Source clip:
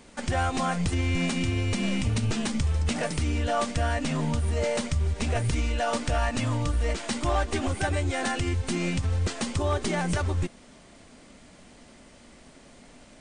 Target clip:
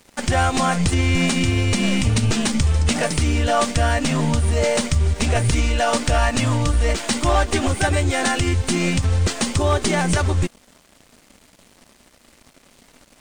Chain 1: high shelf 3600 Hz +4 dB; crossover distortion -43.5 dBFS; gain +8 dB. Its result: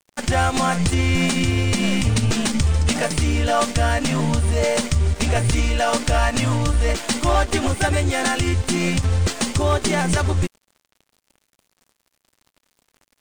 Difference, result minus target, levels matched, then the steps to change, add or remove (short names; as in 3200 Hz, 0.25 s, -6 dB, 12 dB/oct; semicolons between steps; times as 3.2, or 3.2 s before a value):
crossover distortion: distortion +5 dB
change: crossover distortion -49.5 dBFS